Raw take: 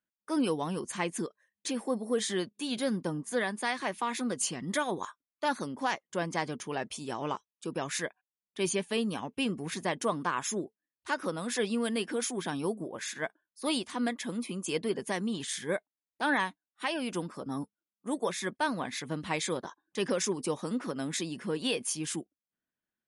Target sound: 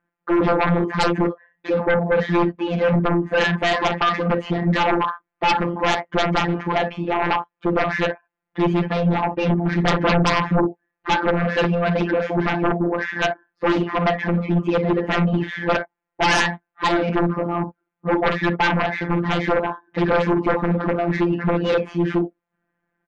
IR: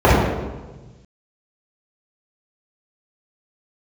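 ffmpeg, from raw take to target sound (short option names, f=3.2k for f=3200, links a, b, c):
-filter_complex "[0:a]equalizer=f=780:w=3.9:g=5,asoftclip=type=tanh:threshold=-20.5dB,asplit=3[a][b][c];[a]afade=t=out:st=9.78:d=0.02[d];[b]aemphasis=mode=reproduction:type=riaa,afade=t=in:st=9.78:d=0.02,afade=t=out:st=10.59:d=0.02[e];[c]afade=t=in:st=10.59:d=0.02[f];[d][e][f]amix=inputs=3:normalize=0,aecho=1:1:33|50|62:0.251|0.266|0.211,afftfilt=real='hypot(re,im)*cos(PI*b)':imag='0':win_size=1024:overlap=0.75,lowpass=f=2k:w=0.5412,lowpass=f=2k:w=1.3066,aeval=exprs='0.211*sin(PI/2*7.94*val(0)/0.211)':c=same"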